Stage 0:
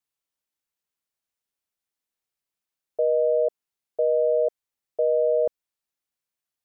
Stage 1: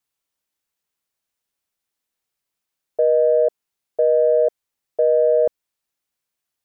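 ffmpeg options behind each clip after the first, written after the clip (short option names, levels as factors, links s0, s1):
-af "acontrast=41"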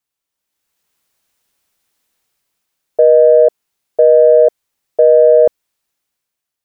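-af "dynaudnorm=f=190:g=7:m=5.01"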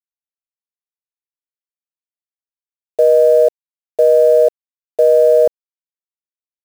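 -af "acrusher=bits=4:mix=0:aa=0.5,volume=0.75"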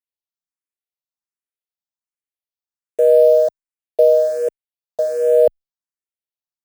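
-filter_complex "[0:a]asplit=2[s0][s1];[s1]afreqshift=1.3[s2];[s0][s2]amix=inputs=2:normalize=1"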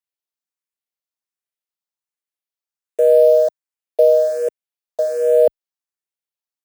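-af "highpass=f=300:p=1,volume=1.12"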